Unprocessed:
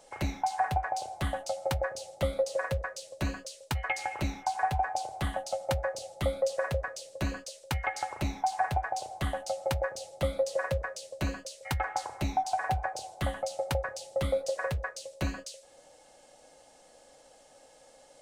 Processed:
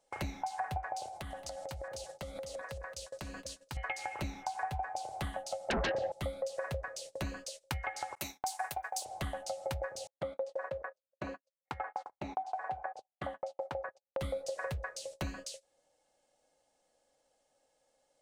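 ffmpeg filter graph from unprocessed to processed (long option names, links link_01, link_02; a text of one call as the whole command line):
ffmpeg -i in.wav -filter_complex "[0:a]asettb=1/sr,asplit=3[link_01][link_02][link_03];[link_01]atrim=end=1.084[link_04];[link_02]atrim=start=1.08:end=3.77,asetpts=PTS-STARTPTS,afade=type=in:duration=0.004:curve=qsin,afade=type=out:start_time=2.686:duration=0.004:curve=qsin,acompressor=threshold=-40dB:ratio=16:attack=3.2:release=140:knee=1:detection=peak,aecho=1:1:224:0.299,atrim=end_sample=118629[link_05];[link_03]atrim=start=3.766[link_06];[link_04][link_05]acrossfade=duration=0.004:curve1=hsin:curve2=qsin[link_07];[link_07][link_06]acrossfade=duration=0.004:curve1=qsin:curve2=hsin,asettb=1/sr,asplit=3[link_08][link_09][link_10];[link_08]atrim=end=5.704[link_11];[link_09]atrim=start=5.7:end=6.12,asetpts=PTS-STARTPTS,afade=type=in:duration=0.004:curve=qsin,afade=type=out:start_time=0.416:duration=0.004:curve=qsin,lowpass=1500,aeval=exprs='0.126*sin(PI/2*6.31*val(0)/0.126)':channel_layout=same[link_12];[link_10]atrim=start=6.116[link_13];[link_11][link_12]acrossfade=duration=0.004:curve1=hsin:curve2=qsin[link_14];[link_14][link_13]acrossfade=duration=0.004:curve1=qsin:curve2=hsin,asettb=1/sr,asplit=3[link_15][link_16][link_17];[link_15]atrim=end=8.154[link_18];[link_16]atrim=start=8.15:end=9.05,asetpts=PTS-STARTPTS,afade=type=in:duration=0.004:curve=qsin,afade=type=out:start_time=0.896:duration=0.004:curve=qsin,aemphasis=mode=production:type=riaa,agate=range=-33dB:threshold=-32dB:ratio=3:release=100:detection=peak[link_19];[link_17]atrim=start=9.046[link_20];[link_18][link_19]acrossfade=duration=0.004:curve1=hsin:curve2=qsin[link_21];[link_21][link_20]acrossfade=duration=0.004:curve1=qsin:curve2=hsin,asettb=1/sr,asplit=3[link_22][link_23][link_24];[link_22]atrim=end=10.074[link_25];[link_23]atrim=start=10.07:end=14.2,asetpts=PTS-STARTPTS,afade=type=in:duration=0.004:curve=qsin,afade=type=out:start_time=4.126:duration=0.004:curve=qsin,agate=range=-35dB:threshold=-38dB:ratio=16:release=100:detection=peak,bandpass=frequency=730:width_type=q:width=0.67[link_26];[link_24]atrim=start=14.196[link_27];[link_25][link_26]acrossfade=duration=0.004:curve1=hsin:curve2=qsin[link_28];[link_28][link_27]acrossfade=duration=0.004:curve1=qsin:curve2=hsin,agate=range=-21dB:threshold=-46dB:ratio=16:detection=peak,acompressor=threshold=-42dB:ratio=2.5,volume=3dB" out.wav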